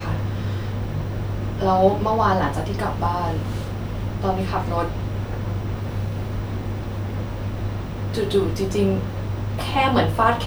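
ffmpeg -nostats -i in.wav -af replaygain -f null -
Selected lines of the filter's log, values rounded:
track_gain = +3.1 dB
track_peak = 0.431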